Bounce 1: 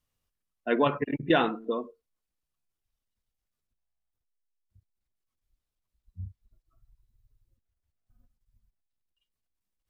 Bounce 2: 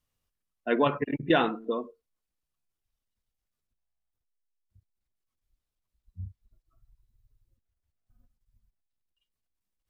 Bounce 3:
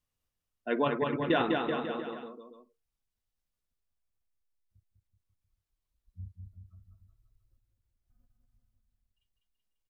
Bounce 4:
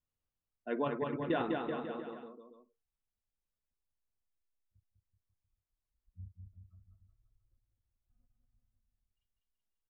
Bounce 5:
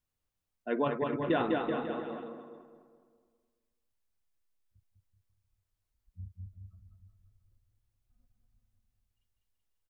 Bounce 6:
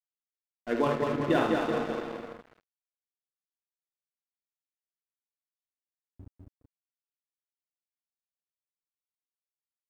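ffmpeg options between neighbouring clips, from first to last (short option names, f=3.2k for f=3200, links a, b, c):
-af anull
-af "aecho=1:1:200|380|542|687.8|819:0.631|0.398|0.251|0.158|0.1,volume=-4.5dB"
-af "highshelf=f=2.1k:g=-8.5,volume=-5dB"
-filter_complex "[0:a]asplit=2[a][b];[b]adelay=210,lowpass=f=2.3k:p=1,volume=-10dB,asplit=2[c][d];[d]adelay=210,lowpass=f=2.3k:p=1,volume=0.51,asplit=2[e][f];[f]adelay=210,lowpass=f=2.3k:p=1,volume=0.51,asplit=2[g][h];[h]adelay=210,lowpass=f=2.3k:p=1,volume=0.51,asplit=2[i][j];[j]adelay=210,lowpass=f=2.3k:p=1,volume=0.51,asplit=2[k][l];[l]adelay=210,lowpass=f=2.3k:p=1,volume=0.51[m];[a][c][e][g][i][k][m]amix=inputs=7:normalize=0,volume=4dB"
-af "aecho=1:1:50|76:0.473|0.473,aeval=exprs='sgn(val(0))*max(abs(val(0))-0.0075,0)':c=same,volume=3.5dB"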